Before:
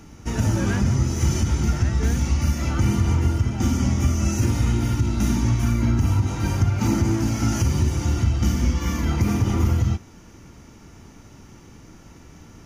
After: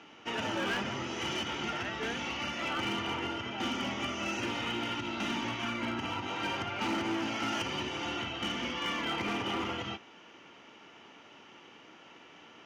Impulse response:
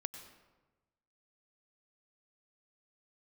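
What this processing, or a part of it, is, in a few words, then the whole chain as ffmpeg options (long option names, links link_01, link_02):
megaphone: -filter_complex "[0:a]asettb=1/sr,asplit=3[link_01][link_02][link_03];[link_01]atrim=end=8.164[link_04];[link_02]atrim=start=8.16:end=8.6,asetpts=PTS-STARTPTS,afade=type=in:duration=0.004:curve=qsin,afade=type=out:start_time=0.436:duration=0.004:curve=qsin,bandreject=frequency=4900:width=11[link_05];[link_03]atrim=start=8.596[link_06];[link_04][link_05]acrossfade=duration=0.004:curve1=hsin:curve2=qsin[link_07];[link_07][link_06]acrossfade=duration=0.004:curve1=qsin:curve2=hsin,highpass=470,lowpass=2900,equalizer=frequency=3000:width_type=o:width=0.51:gain=12,asoftclip=type=hard:threshold=-26.5dB,volume=-1dB"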